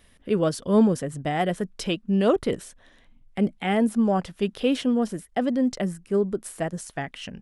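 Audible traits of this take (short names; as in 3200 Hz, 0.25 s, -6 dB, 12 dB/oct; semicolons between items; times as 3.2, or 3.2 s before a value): noise floor -57 dBFS; spectral tilt -6.0 dB/oct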